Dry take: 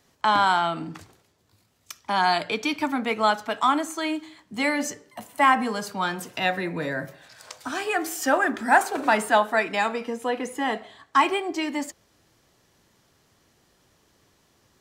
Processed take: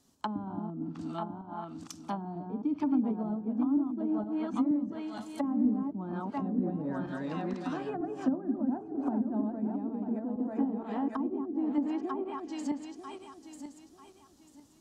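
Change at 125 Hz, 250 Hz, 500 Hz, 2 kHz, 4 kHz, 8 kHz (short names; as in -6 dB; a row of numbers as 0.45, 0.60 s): 0.0 dB, +1.5 dB, -11.0 dB, -25.5 dB, under -20 dB, under -15 dB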